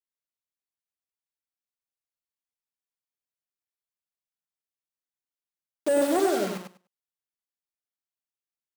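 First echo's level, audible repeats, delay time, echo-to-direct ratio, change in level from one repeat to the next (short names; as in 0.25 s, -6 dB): -5.5 dB, 2, 99 ms, -5.5 dB, -16.0 dB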